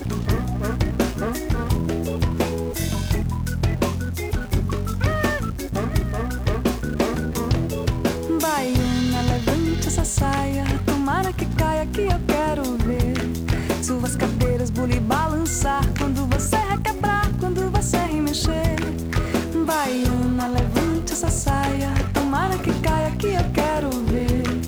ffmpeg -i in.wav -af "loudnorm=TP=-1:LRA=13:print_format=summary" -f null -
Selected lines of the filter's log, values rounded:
Input Integrated:    -22.4 LUFS
Input True Peak:      -8.6 dBTP
Input LRA:             2.3 LU
Input Threshold:     -32.4 LUFS